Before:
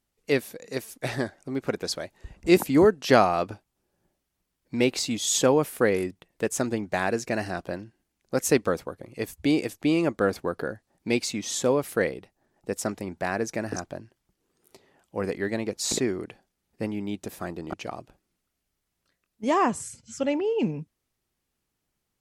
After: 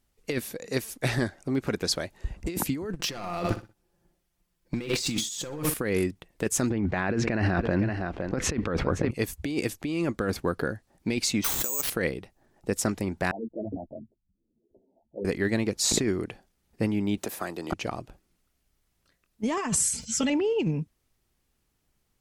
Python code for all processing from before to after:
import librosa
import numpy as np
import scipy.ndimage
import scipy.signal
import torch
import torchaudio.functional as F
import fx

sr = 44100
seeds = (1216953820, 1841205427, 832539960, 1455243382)

y = fx.chain(x, sr, fx.comb(ms=5.8, depth=0.48),
    fx.leveller(passes=2),
    fx.echo_feedback(ms=62, feedback_pct=26, wet_db=-12.0), at=(2.93, 5.74))
y = fx.chain(y, sr, fx.lowpass(hz=2400.0, slope=12),
    fx.echo_single(ms=512, db=-22.0),
    fx.env_flatten(amount_pct=50), at=(6.7, 9.11))
y = fx.chain(y, sr, fx.highpass(hz=1200.0, slope=6),
    fx.resample_bad(factor=6, down='none', up='zero_stuff'), at=(11.44, 11.9))
y = fx.chain(y, sr, fx.envelope_sharpen(power=3.0),
    fx.cheby_ripple(hz=930.0, ripple_db=9),
    fx.ensemble(), at=(13.31, 15.25))
y = fx.chain(y, sr, fx.highpass(hz=490.0, slope=6),
    fx.high_shelf(hz=12000.0, db=7.5),
    fx.band_squash(depth_pct=70), at=(17.17, 17.72))
y = fx.chain(y, sr, fx.high_shelf(hz=2300.0, db=8.0),
    fx.comb(ms=4.6, depth=0.71),
    fx.sustainer(db_per_s=140.0), at=(19.57, 20.3))
y = fx.dynamic_eq(y, sr, hz=650.0, q=1.0, threshold_db=-36.0, ratio=4.0, max_db=-6)
y = fx.over_compress(y, sr, threshold_db=-28.0, ratio=-1.0)
y = fx.low_shelf(y, sr, hz=75.0, db=9.5)